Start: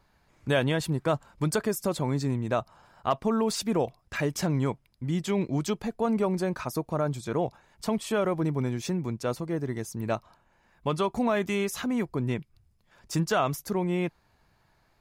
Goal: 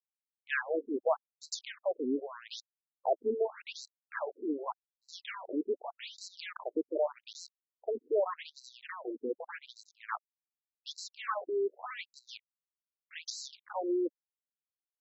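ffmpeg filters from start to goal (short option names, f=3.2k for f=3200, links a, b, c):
-af "acrusher=bits=4:mix=0:aa=0.5,afftfilt=real='re*between(b*sr/1024,330*pow(5600/330,0.5+0.5*sin(2*PI*0.84*pts/sr))/1.41,330*pow(5600/330,0.5+0.5*sin(2*PI*0.84*pts/sr))*1.41)':imag='im*between(b*sr/1024,330*pow(5600/330,0.5+0.5*sin(2*PI*0.84*pts/sr))/1.41,330*pow(5600/330,0.5+0.5*sin(2*PI*0.84*pts/sr))*1.41)':win_size=1024:overlap=0.75"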